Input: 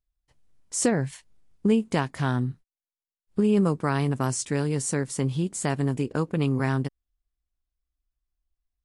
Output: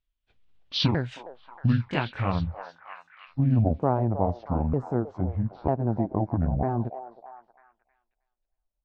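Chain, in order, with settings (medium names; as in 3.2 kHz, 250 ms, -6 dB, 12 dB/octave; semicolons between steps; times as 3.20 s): sawtooth pitch modulation -12 st, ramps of 947 ms; low-pass sweep 3.2 kHz -> 720 Hz, 1.79–3.42 s; repeats whose band climbs or falls 315 ms, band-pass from 660 Hz, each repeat 0.7 oct, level -7.5 dB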